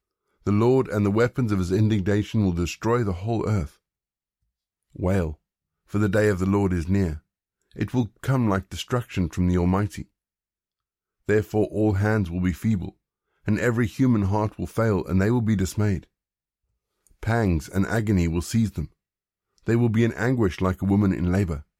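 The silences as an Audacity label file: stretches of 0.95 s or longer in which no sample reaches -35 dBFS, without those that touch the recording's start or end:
3.670000	4.960000	silence
10.020000	11.290000	silence
15.990000	17.230000	silence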